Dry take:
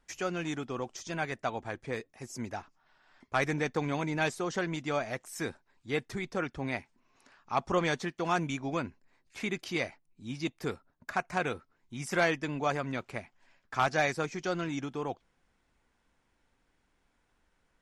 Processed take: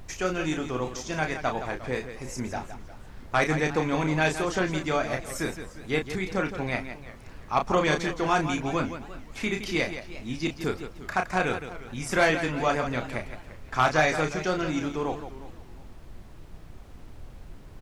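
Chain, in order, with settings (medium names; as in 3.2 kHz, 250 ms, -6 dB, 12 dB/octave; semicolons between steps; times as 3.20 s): loudspeakers at several distances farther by 11 m -6 dB, 57 m -10 dB; added noise brown -47 dBFS; modulated delay 351 ms, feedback 31%, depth 170 cents, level -17 dB; trim +4.5 dB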